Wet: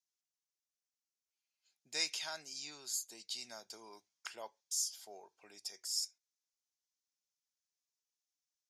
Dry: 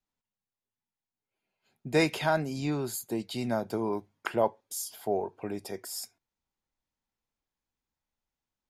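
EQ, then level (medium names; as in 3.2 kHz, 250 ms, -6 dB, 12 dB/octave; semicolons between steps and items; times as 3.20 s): band-pass filter 5.9 kHz, Q 2.9; +6.5 dB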